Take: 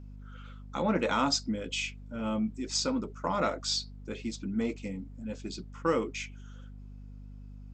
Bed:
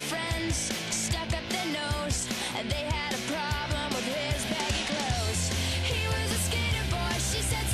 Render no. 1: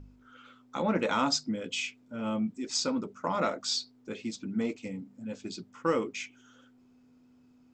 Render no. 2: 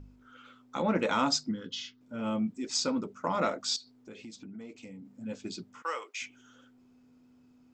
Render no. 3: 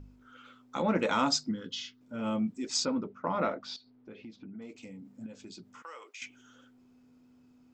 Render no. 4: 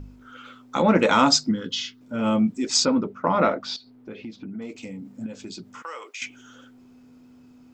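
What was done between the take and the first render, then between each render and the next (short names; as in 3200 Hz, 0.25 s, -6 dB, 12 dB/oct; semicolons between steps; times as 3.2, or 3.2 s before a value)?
de-hum 50 Hz, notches 4
1.51–2.01 fixed phaser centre 2400 Hz, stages 6; 3.76–5.05 compressor 4:1, threshold -44 dBFS; 5.82–6.22 Bessel high-pass 920 Hz, order 4
2.85–4.62 air absorption 270 m; 5.26–6.22 compressor 3:1, threshold -46 dBFS
gain +10 dB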